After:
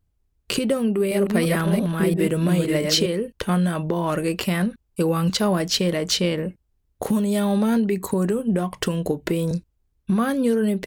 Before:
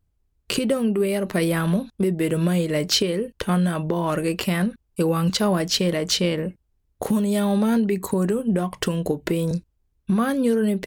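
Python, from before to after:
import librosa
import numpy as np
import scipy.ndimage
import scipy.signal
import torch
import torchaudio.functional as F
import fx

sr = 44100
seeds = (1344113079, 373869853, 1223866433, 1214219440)

y = fx.reverse_delay(x, sr, ms=342, wet_db=-3, at=(0.77, 3.06))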